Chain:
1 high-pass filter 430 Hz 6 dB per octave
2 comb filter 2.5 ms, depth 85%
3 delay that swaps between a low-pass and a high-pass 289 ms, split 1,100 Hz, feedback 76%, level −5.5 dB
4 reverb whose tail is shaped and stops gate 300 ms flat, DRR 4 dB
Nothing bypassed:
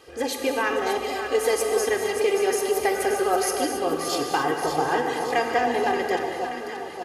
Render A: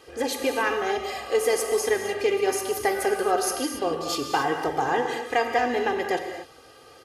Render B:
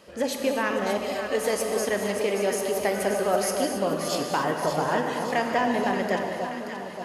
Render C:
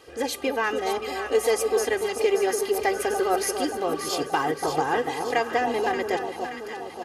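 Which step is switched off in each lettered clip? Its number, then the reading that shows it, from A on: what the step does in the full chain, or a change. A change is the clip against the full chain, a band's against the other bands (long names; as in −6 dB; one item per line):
3, echo-to-direct ratio −1.0 dB to −4.0 dB
2, 125 Hz band +8.0 dB
4, echo-to-direct ratio −1.0 dB to −5.0 dB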